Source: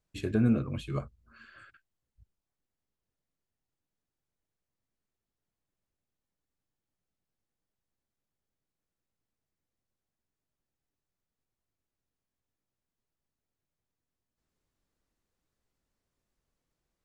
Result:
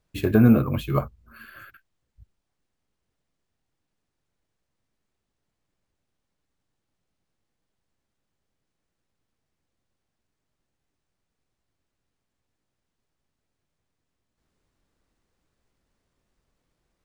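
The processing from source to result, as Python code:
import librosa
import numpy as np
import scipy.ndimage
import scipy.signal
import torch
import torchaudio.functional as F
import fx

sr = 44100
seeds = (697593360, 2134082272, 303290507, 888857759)

y = fx.high_shelf(x, sr, hz=4900.0, db=-5.0)
y = np.repeat(y[::3], 3)[:len(y)]
y = fx.dynamic_eq(y, sr, hz=920.0, q=1.3, threshold_db=-50.0, ratio=4.0, max_db=7)
y = y * 10.0 ** (9.0 / 20.0)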